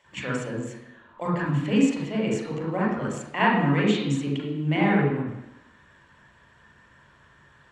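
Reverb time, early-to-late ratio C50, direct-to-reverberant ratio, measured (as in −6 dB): 0.90 s, 1.5 dB, −4.0 dB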